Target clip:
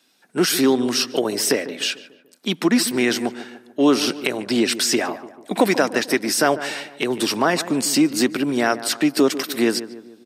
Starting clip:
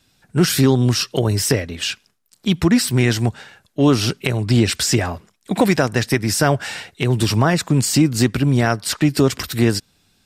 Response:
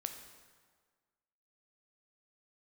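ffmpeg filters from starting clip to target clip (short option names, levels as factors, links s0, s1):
-filter_complex "[0:a]highpass=f=240:w=0.5412,highpass=f=240:w=1.3066,bandreject=f=7300:w=13,asplit=2[s0][s1];[s1]adelay=147,lowpass=f=1400:p=1,volume=0.224,asplit=2[s2][s3];[s3]adelay=147,lowpass=f=1400:p=1,volume=0.51,asplit=2[s4][s5];[s5]adelay=147,lowpass=f=1400:p=1,volume=0.51,asplit=2[s6][s7];[s7]adelay=147,lowpass=f=1400:p=1,volume=0.51,asplit=2[s8][s9];[s9]adelay=147,lowpass=f=1400:p=1,volume=0.51[s10];[s2][s4][s6][s8][s10]amix=inputs=5:normalize=0[s11];[s0][s11]amix=inputs=2:normalize=0"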